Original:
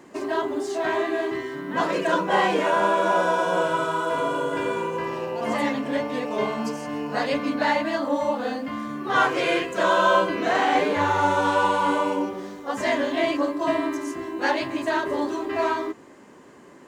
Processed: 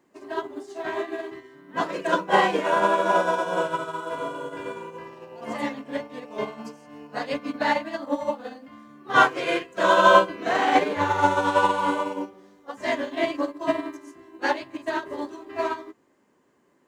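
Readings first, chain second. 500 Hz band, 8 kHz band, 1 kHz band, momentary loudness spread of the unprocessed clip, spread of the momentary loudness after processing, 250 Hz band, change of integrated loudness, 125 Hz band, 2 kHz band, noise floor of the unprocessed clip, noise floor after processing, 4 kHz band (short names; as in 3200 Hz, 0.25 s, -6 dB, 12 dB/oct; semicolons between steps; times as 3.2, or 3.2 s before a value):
-2.0 dB, -3.0 dB, 0.0 dB, 8 LU, 17 LU, -4.0 dB, -0.5 dB, -3.0 dB, -0.5 dB, -48 dBFS, -64 dBFS, -1.0 dB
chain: requantised 12-bit, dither triangular; upward expander 2.5:1, over -31 dBFS; gain +6 dB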